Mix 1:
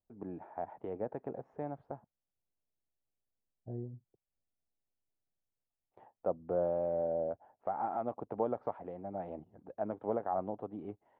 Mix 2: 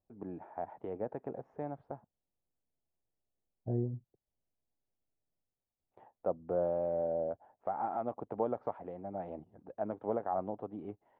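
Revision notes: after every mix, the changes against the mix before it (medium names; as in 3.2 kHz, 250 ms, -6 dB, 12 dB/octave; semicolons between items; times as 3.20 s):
second voice +8.0 dB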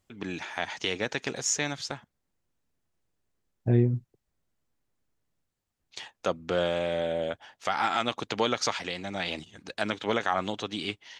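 second voice +4.0 dB; master: remove four-pole ladder low-pass 880 Hz, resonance 40%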